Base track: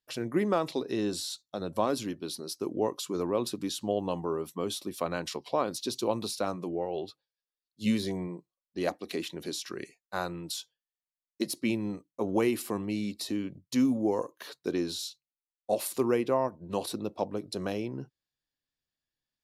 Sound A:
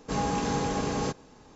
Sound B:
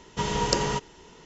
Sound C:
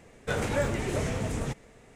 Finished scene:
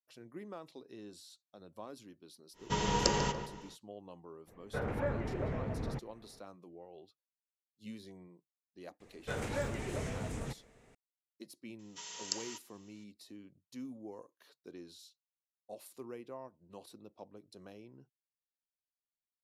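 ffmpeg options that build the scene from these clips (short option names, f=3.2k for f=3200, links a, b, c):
-filter_complex "[2:a]asplit=2[a][b];[3:a]asplit=2[c][d];[0:a]volume=-19.5dB[e];[a]asplit=2[f][g];[g]adelay=144,lowpass=f=2.4k:p=1,volume=-8.5dB,asplit=2[h][i];[i]adelay=144,lowpass=f=2.4k:p=1,volume=0.38,asplit=2[j][k];[k]adelay=144,lowpass=f=2.4k:p=1,volume=0.38,asplit=2[l][m];[m]adelay=144,lowpass=f=2.4k:p=1,volume=0.38[n];[f][h][j][l][n]amix=inputs=5:normalize=0[o];[c]lowpass=1.6k[p];[b]aderivative[q];[o]atrim=end=1.25,asetpts=PTS-STARTPTS,volume=-5dB,afade=t=in:d=0.1,afade=t=out:st=1.15:d=0.1,adelay=2530[r];[p]atrim=end=1.95,asetpts=PTS-STARTPTS,volume=-6.5dB,afade=t=in:d=0.02,afade=t=out:st=1.93:d=0.02,adelay=4460[s];[d]atrim=end=1.95,asetpts=PTS-STARTPTS,volume=-8.5dB,afade=t=in:d=0.004:c=hsin,afade=t=out:st=1.946:d=0.004:c=hsin,adelay=9000[t];[q]atrim=end=1.25,asetpts=PTS-STARTPTS,volume=-7dB,afade=t=in:d=0.004:c=hsin,afade=t=out:st=1.246:d=0.004:c=hsin,adelay=11790[u];[e][r][s][t][u]amix=inputs=5:normalize=0"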